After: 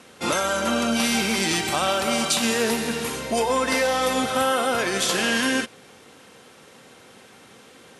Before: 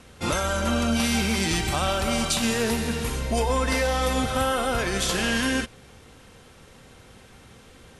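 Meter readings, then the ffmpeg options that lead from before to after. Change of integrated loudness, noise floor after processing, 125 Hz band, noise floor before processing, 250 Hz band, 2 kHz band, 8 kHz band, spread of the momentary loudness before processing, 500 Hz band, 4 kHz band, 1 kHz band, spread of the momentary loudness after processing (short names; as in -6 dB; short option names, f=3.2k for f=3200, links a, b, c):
+2.0 dB, -50 dBFS, -8.0 dB, -50 dBFS, +0.5 dB, +3.0 dB, +3.0 dB, 4 LU, +3.0 dB, +3.0 dB, +3.0 dB, 4 LU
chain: -af "highpass=220,volume=3dB"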